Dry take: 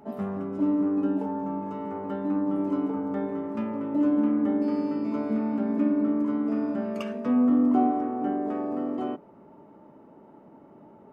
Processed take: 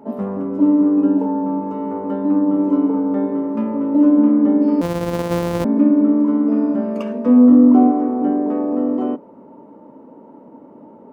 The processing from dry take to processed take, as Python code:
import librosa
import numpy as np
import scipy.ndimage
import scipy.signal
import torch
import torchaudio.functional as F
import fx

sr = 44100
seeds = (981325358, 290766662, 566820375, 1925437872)

y = fx.sample_sort(x, sr, block=256, at=(4.81, 5.65))
y = fx.peak_eq(y, sr, hz=510.0, db=4.0, octaves=2.4)
y = fx.small_body(y, sr, hz=(260.0, 490.0, 940.0), ring_ms=30, db=10)